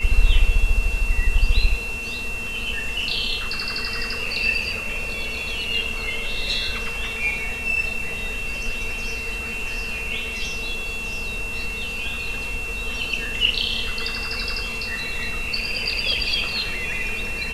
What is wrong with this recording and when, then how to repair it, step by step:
tone 2700 Hz -28 dBFS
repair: notch 2700 Hz, Q 30

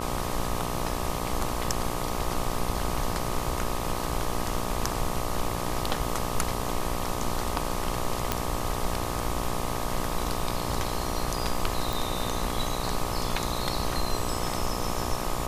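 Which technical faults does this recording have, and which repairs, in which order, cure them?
buzz 60 Hz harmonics 21 -33 dBFS
8.32 pop -8 dBFS
11.93 pop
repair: de-click; de-hum 60 Hz, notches 21

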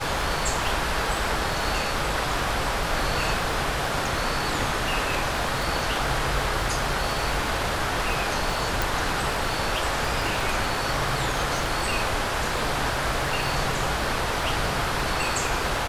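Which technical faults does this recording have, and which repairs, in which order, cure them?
crackle 50/s -30 dBFS
8.82 pop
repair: de-click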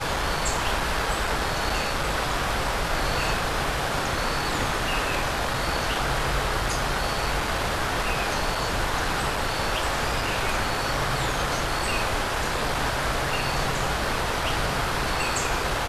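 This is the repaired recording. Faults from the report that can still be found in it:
8.82 pop

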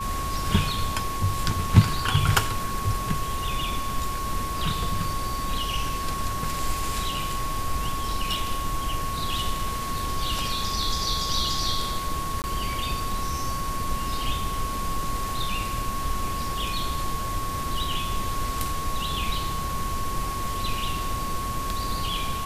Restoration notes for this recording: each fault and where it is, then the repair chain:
tone 1100 Hz -30 dBFS
12.42–12.44 gap 19 ms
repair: notch 1100 Hz, Q 30; interpolate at 12.42, 19 ms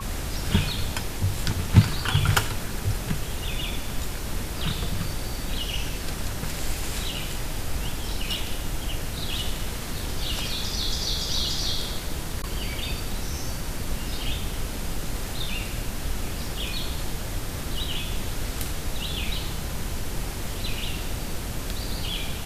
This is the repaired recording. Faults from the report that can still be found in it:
none

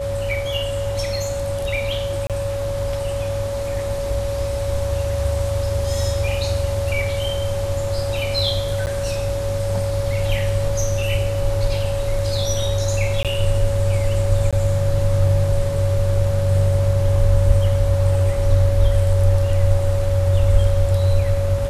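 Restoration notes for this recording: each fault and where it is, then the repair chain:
tone 560 Hz -23 dBFS
2.27–2.3 gap 27 ms
8.86–8.87 gap 9.3 ms
13.23–13.25 gap 17 ms
14.51–14.53 gap 16 ms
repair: notch 560 Hz, Q 30; interpolate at 2.27, 27 ms; interpolate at 8.86, 9.3 ms; interpolate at 13.23, 17 ms; interpolate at 14.51, 16 ms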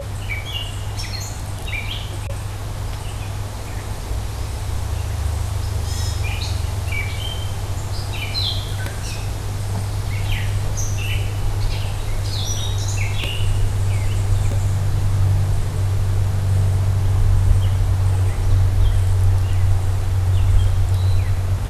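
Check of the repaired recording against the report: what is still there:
none

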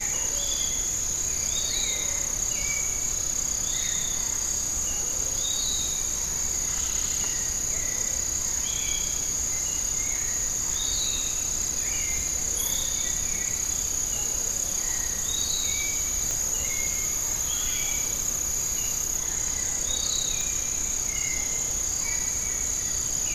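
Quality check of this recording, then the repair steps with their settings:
16.31 pop
20.41 pop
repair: de-click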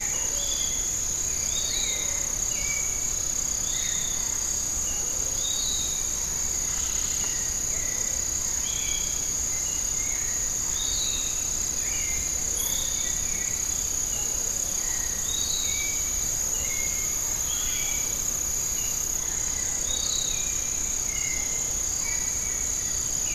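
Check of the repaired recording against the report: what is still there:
none

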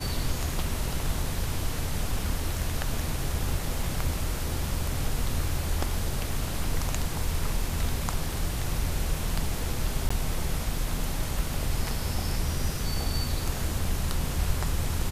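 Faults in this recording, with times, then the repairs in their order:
10.09–10.11 gap 15 ms
13.85 gap 2.7 ms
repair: interpolate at 10.09, 15 ms; interpolate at 13.85, 2.7 ms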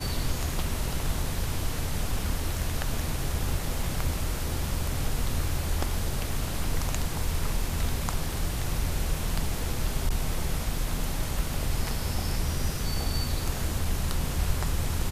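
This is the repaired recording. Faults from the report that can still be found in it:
none

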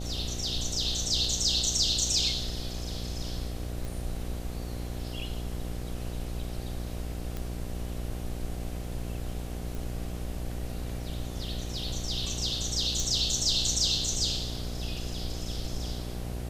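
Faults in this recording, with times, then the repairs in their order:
buzz 60 Hz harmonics 13 -36 dBFS
3.85 pop
7.37 pop -21 dBFS
9.75 pop
13 pop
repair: de-click; de-hum 60 Hz, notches 13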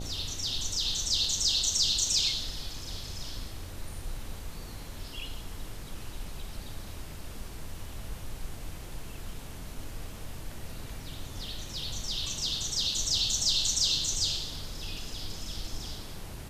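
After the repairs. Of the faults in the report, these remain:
none

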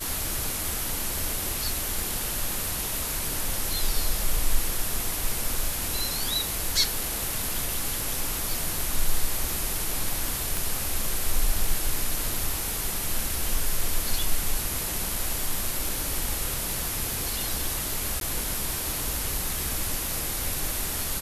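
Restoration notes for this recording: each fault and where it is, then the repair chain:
10.57 pop
18.2–18.21 gap 12 ms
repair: de-click; interpolate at 18.2, 12 ms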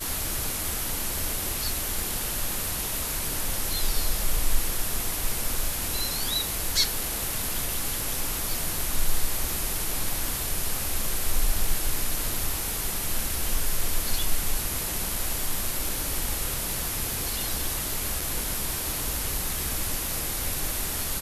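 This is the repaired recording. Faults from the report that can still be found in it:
none

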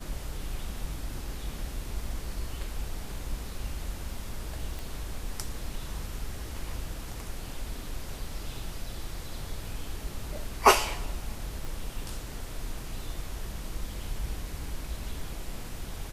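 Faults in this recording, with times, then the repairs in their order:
4.79 pop
11.65 pop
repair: de-click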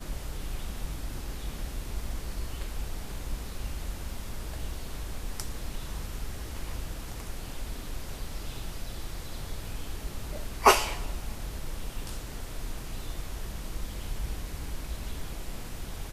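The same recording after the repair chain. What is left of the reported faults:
11.65 pop

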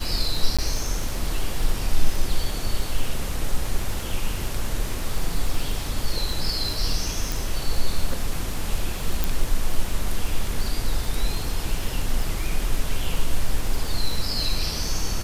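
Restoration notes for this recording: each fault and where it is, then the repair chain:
crackle 47/s -27 dBFS
0.57–0.59 gap 16 ms
7.32 pop
9.24 pop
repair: de-click; interpolate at 0.57, 16 ms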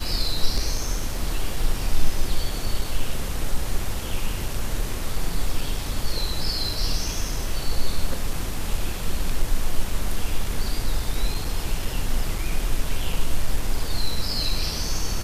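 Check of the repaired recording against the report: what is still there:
none

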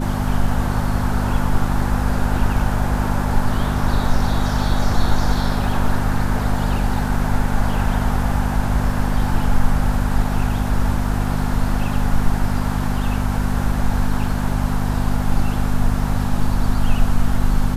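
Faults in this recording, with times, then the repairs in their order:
hum 50 Hz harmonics 5 -22 dBFS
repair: de-hum 50 Hz, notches 5

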